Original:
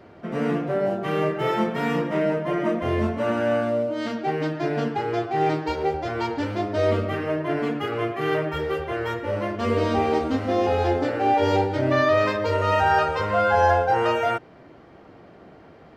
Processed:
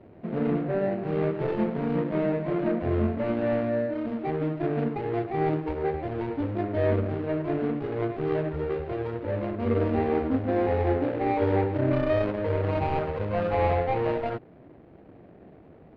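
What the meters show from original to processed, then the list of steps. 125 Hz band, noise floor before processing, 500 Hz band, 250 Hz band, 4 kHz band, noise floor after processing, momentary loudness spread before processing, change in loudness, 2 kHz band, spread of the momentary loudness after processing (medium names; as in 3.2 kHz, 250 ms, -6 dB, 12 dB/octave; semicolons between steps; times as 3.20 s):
0.0 dB, -48 dBFS, -3.5 dB, -1.0 dB, under -10 dB, -51 dBFS, 8 LU, -4.0 dB, -10.0 dB, 6 LU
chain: median filter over 41 samples; distance through air 400 m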